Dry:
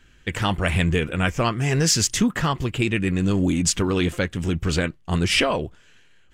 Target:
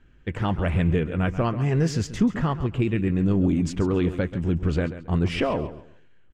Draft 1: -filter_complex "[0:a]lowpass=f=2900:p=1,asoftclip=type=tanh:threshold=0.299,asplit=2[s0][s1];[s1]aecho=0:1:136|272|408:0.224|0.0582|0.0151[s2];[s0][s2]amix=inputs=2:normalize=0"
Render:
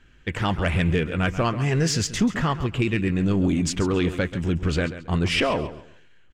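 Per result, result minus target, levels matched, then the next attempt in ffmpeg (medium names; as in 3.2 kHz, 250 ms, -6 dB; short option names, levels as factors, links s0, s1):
saturation: distortion +19 dB; 4 kHz band +8.5 dB
-filter_complex "[0:a]lowpass=f=2900:p=1,asoftclip=type=tanh:threshold=0.841,asplit=2[s0][s1];[s1]aecho=0:1:136|272|408:0.224|0.0582|0.0151[s2];[s0][s2]amix=inputs=2:normalize=0"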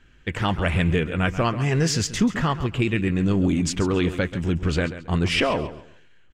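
4 kHz band +8.5 dB
-filter_complex "[0:a]lowpass=f=750:p=1,asoftclip=type=tanh:threshold=0.841,asplit=2[s0][s1];[s1]aecho=0:1:136|272|408:0.224|0.0582|0.0151[s2];[s0][s2]amix=inputs=2:normalize=0"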